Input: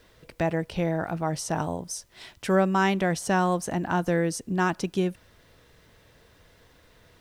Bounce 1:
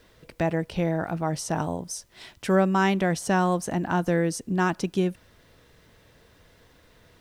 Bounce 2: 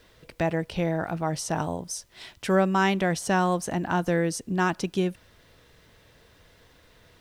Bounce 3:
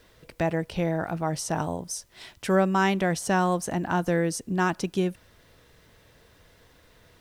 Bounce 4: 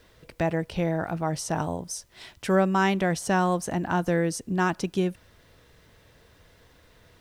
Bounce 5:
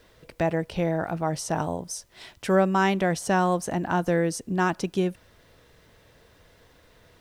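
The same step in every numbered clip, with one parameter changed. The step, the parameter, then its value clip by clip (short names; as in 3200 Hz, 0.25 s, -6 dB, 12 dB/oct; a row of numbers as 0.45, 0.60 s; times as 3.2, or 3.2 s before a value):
bell, frequency: 230, 3400, 14000, 73, 580 Hz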